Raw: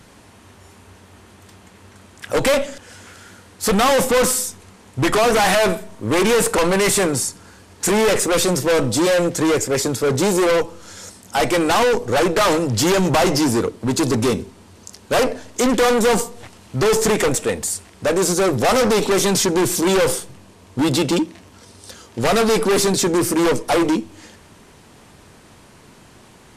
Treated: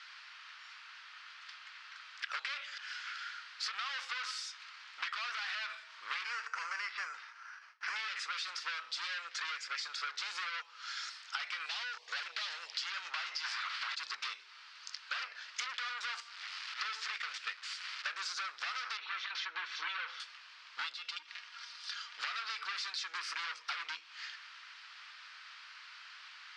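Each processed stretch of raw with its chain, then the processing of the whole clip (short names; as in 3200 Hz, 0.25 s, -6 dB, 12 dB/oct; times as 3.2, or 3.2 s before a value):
6.24–7.96 gate with hold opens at -34 dBFS, closes at -38 dBFS + BPF 190–2100 Hz + careless resampling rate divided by 6×, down filtered, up hold
11.66–12.75 fixed phaser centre 570 Hz, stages 4 + hard clip -18.5 dBFS
13.43–13.94 spectral limiter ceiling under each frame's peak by 25 dB + overdrive pedal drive 24 dB, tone 4500 Hz, clips at -3.5 dBFS
16.2–18.07 delta modulation 64 kbps, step -24 dBFS + gate -21 dBFS, range -9 dB
18.97–20.2 air absorption 230 m + notch 4900 Hz, Q 10 + notch comb 200 Hz
20.93–22.19 comb 4.2 ms, depth 43% + compressor 8:1, threshold -30 dBFS
whole clip: Chebyshev band-pass 1300–4900 Hz, order 3; limiter -17 dBFS; compressor 12:1, threshold -38 dBFS; gain +2 dB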